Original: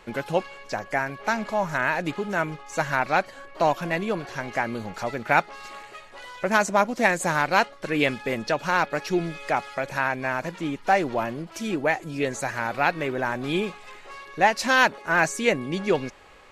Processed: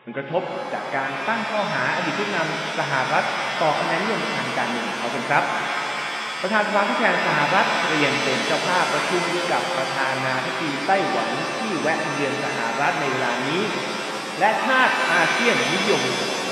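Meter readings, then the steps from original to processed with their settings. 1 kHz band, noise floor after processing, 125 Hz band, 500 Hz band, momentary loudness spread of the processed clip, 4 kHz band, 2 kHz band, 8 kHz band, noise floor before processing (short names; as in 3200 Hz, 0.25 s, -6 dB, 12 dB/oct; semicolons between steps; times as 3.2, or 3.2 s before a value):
+3.5 dB, -29 dBFS, +1.0 dB, +2.5 dB, 7 LU, +10.0 dB, +4.0 dB, +4.5 dB, -47 dBFS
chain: FFT band-pass 120–3800 Hz; shimmer reverb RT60 3.9 s, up +7 st, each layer -2 dB, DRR 2 dB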